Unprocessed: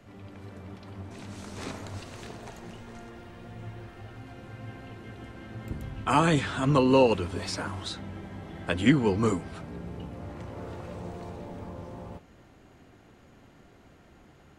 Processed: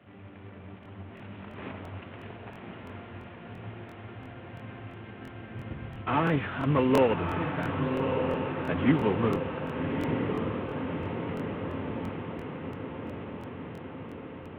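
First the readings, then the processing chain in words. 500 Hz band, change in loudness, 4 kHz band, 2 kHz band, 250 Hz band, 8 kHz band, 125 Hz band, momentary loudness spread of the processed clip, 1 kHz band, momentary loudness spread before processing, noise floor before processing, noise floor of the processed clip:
0.0 dB, −2.0 dB, −6.0 dB, −0.5 dB, −0.5 dB, below −15 dB, 0.0 dB, 18 LU, −1.0 dB, 22 LU, −56 dBFS, −46 dBFS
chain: variable-slope delta modulation 16 kbit/s
high-pass filter 69 Hz 24 dB per octave
on a send: feedback delay with all-pass diffusion 1,189 ms, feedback 67%, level −4.5 dB
on the sum: regular buffer underruns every 0.34 s, samples 1,024, repeat, from 0:00.81
level −1.5 dB

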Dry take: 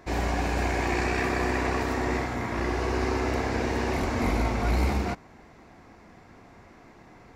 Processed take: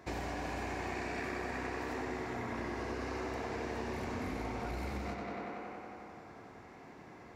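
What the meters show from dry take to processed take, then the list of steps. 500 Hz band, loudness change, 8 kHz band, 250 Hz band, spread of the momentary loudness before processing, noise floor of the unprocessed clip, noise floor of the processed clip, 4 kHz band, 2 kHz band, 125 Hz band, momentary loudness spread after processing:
−10.5 dB, −12.0 dB, −12.0 dB, −11.0 dB, 3 LU, −52 dBFS, −53 dBFS, −11.5 dB, −10.5 dB, −14.5 dB, 14 LU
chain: high-pass filter 63 Hz
on a send: tape delay 92 ms, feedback 88%, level −5 dB, low-pass 4,900 Hz
on the sum: downward compressor 6 to 1, threshold −32 dBFS, peak gain reduction 11 dB
level −4 dB

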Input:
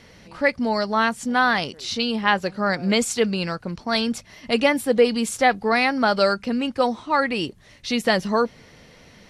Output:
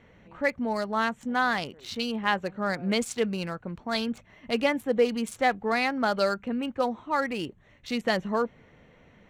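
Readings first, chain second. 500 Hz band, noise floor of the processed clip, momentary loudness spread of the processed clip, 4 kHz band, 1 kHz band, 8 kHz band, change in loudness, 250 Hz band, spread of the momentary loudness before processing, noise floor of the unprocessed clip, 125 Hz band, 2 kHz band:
−6.0 dB, −58 dBFS, 8 LU, −8.0 dB, −6.0 dB, −10.5 dB, −6.5 dB, −6.0 dB, 8 LU, −50 dBFS, −6.0 dB, −6.5 dB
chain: adaptive Wiener filter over 9 samples
level −6 dB

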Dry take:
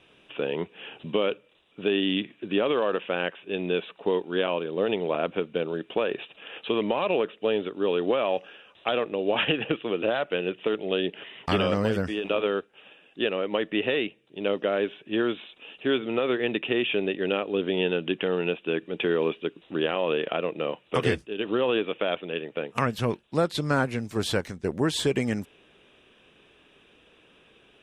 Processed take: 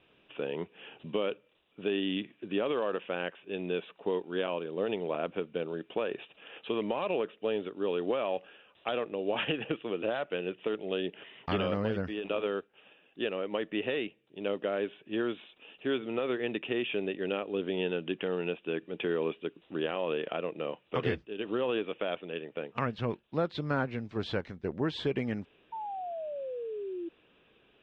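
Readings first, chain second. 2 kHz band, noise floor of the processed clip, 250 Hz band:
−7.5 dB, −66 dBFS, −6.0 dB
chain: transistor ladder low-pass 5,000 Hz, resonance 25%
sound drawn into the spectrogram fall, 0:25.72–0:27.09, 330–920 Hz −37 dBFS
high-shelf EQ 3,300 Hz −9.5 dB

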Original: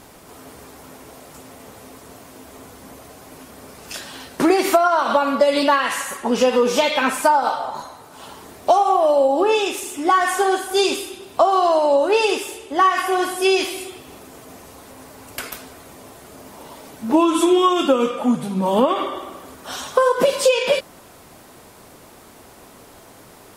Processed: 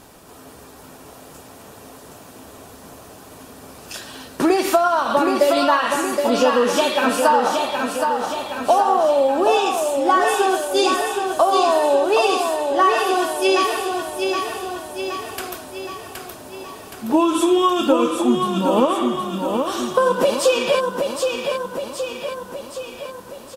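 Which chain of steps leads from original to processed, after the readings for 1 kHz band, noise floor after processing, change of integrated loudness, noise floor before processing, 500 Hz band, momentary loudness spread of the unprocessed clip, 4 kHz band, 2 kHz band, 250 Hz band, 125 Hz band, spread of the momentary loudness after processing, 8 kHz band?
+0.5 dB, −42 dBFS, −0.5 dB, −45 dBFS, +0.5 dB, 17 LU, +0.5 dB, 0.0 dB, +0.5 dB, can't be measured, 16 LU, +0.5 dB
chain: notch filter 2,100 Hz, Q 9.1
repeating echo 770 ms, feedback 57%, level −5 dB
level −1 dB

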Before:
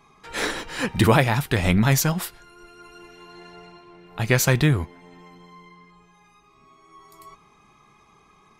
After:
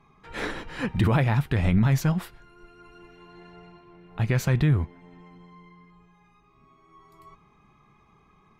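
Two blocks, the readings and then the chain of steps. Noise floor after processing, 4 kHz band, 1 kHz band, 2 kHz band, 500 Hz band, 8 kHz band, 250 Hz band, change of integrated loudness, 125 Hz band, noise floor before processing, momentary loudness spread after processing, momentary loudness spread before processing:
−60 dBFS, −10.5 dB, −7.0 dB, −8.0 dB, −7.5 dB, −15.0 dB, −2.5 dB, −3.0 dB, −0.5 dB, −57 dBFS, 12 LU, 15 LU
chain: bass and treble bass +7 dB, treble −11 dB
brickwall limiter −7 dBFS, peak gain reduction 6 dB
level −5 dB

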